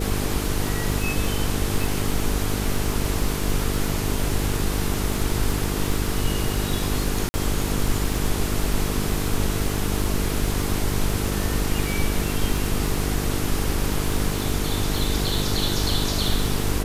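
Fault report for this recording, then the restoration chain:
buzz 50 Hz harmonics 9 -27 dBFS
crackle 55 per s -27 dBFS
7.29–7.34 s: dropout 50 ms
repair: de-click; de-hum 50 Hz, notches 9; interpolate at 7.29 s, 50 ms

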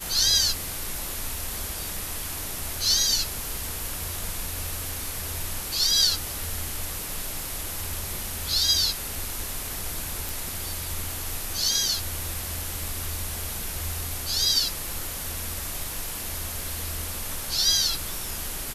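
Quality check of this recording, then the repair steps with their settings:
10.29 s: pop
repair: de-click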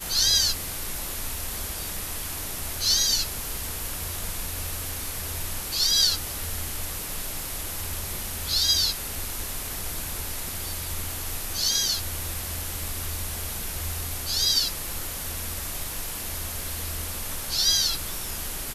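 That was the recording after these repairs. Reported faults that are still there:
nothing left

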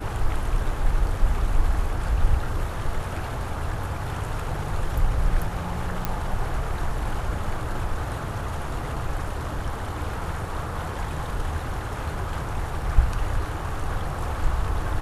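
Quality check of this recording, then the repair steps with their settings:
6.05 s: pop -10 dBFS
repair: de-click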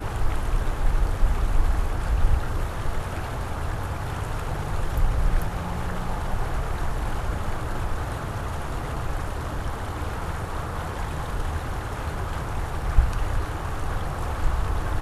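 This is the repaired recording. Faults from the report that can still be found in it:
nothing left

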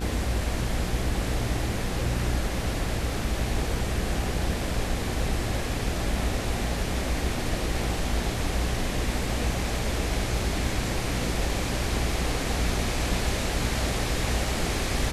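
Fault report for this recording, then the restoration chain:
buzz 60 Hz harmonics 30 -32 dBFS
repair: de-hum 60 Hz, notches 30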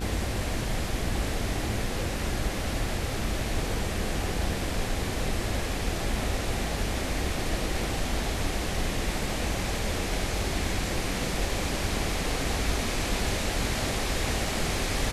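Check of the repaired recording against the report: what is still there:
nothing left

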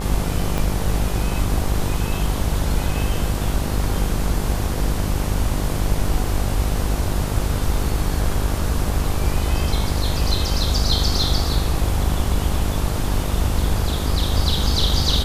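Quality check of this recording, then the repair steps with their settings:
buzz 50 Hz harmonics 24 -24 dBFS
0.58 s: pop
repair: de-click; de-hum 50 Hz, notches 24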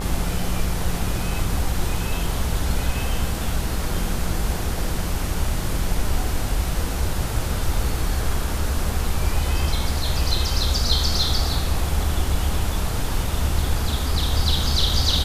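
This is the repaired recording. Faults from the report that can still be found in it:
0.58 s: pop

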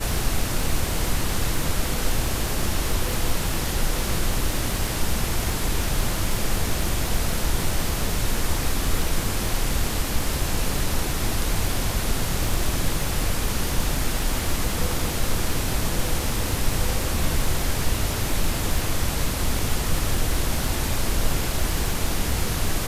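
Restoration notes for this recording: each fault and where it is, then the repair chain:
crackle 60 per s -27 dBFS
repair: de-click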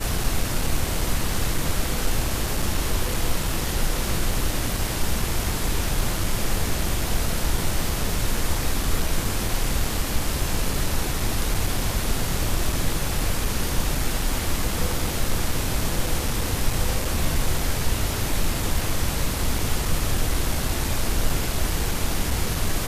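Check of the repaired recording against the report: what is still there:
nothing left

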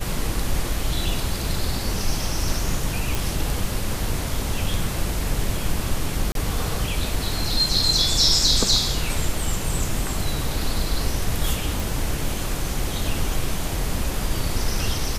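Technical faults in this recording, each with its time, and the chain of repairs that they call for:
3.15 s: pop
6.32–6.35 s: dropout 32 ms
11.80 s: pop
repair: de-click; interpolate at 6.32 s, 32 ms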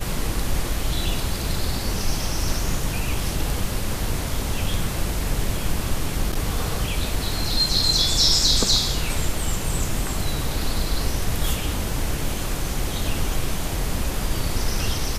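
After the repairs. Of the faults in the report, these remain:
nothing left

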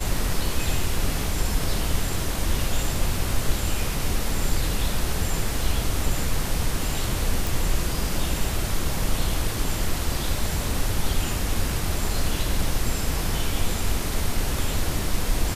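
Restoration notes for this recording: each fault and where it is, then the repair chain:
7.47 s: pop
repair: de-click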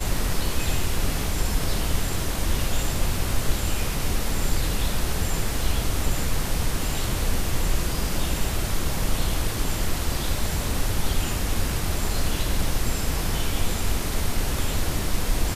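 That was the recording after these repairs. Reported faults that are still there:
nothing left

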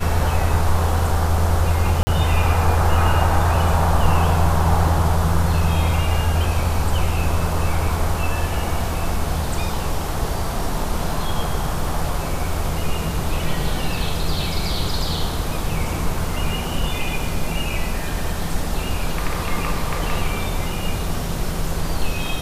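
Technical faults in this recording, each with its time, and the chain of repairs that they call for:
2.03–2.07 s: dropout 40 ms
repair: interpolate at 2.03 s, 40 ms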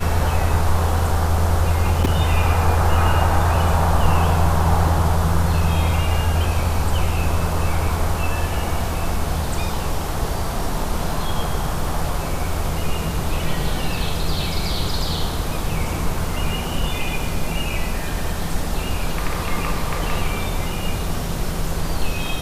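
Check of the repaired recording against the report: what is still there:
nothing left

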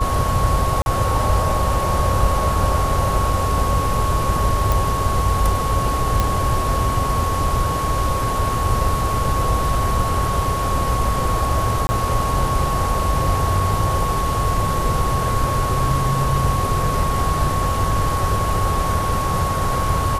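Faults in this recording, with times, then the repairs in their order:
whine 1.1 kHz -22 dBFS
0.82–0.86 s: dropout 41 ms
4.72 s: pop
6.20 s: pop -4 dBFS
11.87–11.89 s: dropout 20 ms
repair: de-click; band-stop 1.1 kHz, Q 30; interpolate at 0.82 s, 41 ms; interpolate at 11.87 s, 20 ms

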